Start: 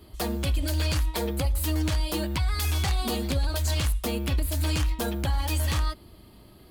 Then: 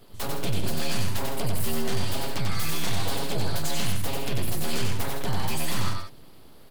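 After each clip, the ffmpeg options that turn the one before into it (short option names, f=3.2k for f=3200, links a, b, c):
-af "aeval=exprs='abs(val(0))':c=same,aecho=1:1:93.29|160.3:0.708|0.355"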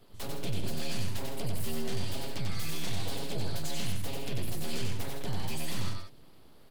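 -filter_complex "[0:a]highshelf=f=10k:g=-5,acrossover=split=790|1700[a][b][c];[b]acompressor=threshold=-52dB:ratio=6[d];[a][d][c]amix=inputs=3:normalize=0,volume=-6dB"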